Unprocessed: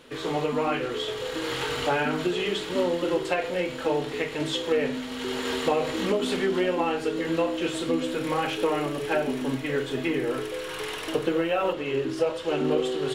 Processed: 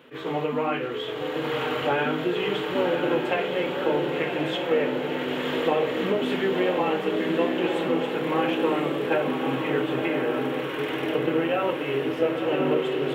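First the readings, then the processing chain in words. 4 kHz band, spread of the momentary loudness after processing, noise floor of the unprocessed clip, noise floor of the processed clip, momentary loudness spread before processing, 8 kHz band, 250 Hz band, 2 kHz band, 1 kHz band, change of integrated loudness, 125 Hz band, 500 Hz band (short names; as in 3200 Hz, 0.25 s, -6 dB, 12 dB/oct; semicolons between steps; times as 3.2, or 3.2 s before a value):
-1.0 dB, 4 LU, -35 dBFS, -31 dBFS, 5 LU, under -10 dB, +2.0 dB, +2.0 dB, +2.0 dB, +1.5 dB, +1.5 dB, +2.0 dB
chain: HPF 99 Hz 24 dB/oct; band shelf 6700 Hz -13.5 dB; diffused feedback echo 1.056 s, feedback 62%, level -4 dB; attack slew limiter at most 280 dB/s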